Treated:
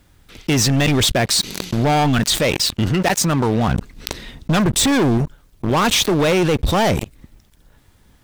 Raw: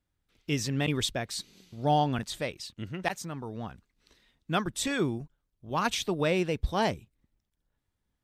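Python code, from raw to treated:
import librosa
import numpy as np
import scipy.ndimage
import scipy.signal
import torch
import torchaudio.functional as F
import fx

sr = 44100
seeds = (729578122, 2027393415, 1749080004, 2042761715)

y = fx.low_shelf(x, sr, hz=490.0, db=8.0, at=(3.68, 5.18))
y = fx.leveller(y, sr, passes=5)
y = fx.env_flatten(y, sr, amount_pct=70)
y = y * librosa.db_to_amplitude(-2.5)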